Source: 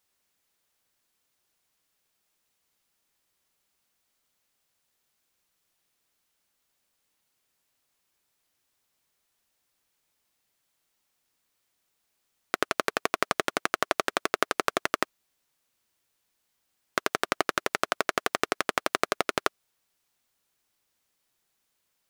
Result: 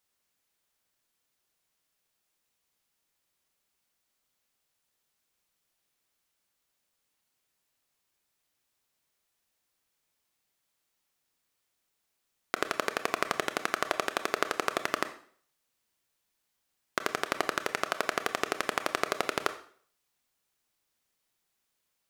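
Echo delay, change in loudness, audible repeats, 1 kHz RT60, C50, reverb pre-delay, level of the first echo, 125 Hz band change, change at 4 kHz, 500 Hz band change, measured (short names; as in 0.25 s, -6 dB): none, -3.0 dB, none, 0.50 s, 12.5 dB, 24 ms, none, -3.0 dB, -3.0 dB, -3.0 dB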